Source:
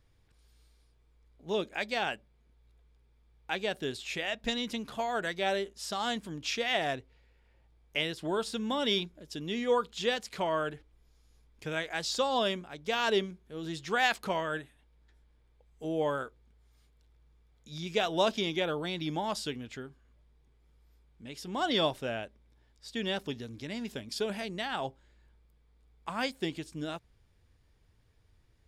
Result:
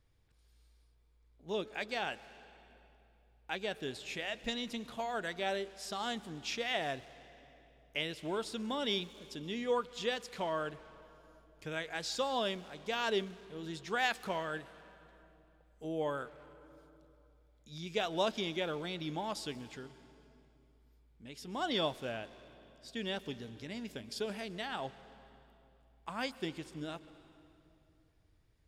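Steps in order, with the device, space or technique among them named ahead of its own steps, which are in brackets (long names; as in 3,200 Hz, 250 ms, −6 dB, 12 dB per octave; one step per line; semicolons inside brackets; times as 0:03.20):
saturated reverb return (on a send at −12 dB: convolution reverb RT60 2.4 s, pre-delay 115 ms + soft clipping −35 dBFS, distortion −8 dB)
on the sum: level −5 dB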